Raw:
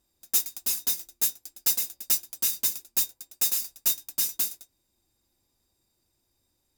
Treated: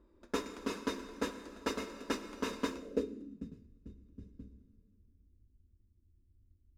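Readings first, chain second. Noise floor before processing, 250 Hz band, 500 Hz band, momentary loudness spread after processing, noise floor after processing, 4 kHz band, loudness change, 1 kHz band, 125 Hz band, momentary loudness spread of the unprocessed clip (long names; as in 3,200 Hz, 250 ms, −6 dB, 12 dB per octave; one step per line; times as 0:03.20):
−75 dBFS, +14.0 dB, +14.0 dB, 17 LU, −69 dBFS, −13.5 dB, −14.0 dB, +7.0 dB, can't be measured, 4 LU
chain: phaser with its sweep stopped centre 320 Hz, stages 4
dense smooth reverb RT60 2.6 s, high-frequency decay 0.8×, DRR 8.5 dB
low-pass filter sweep 910 Hz → 110 Hz, 0:02.70–0:03.62
level +15 dB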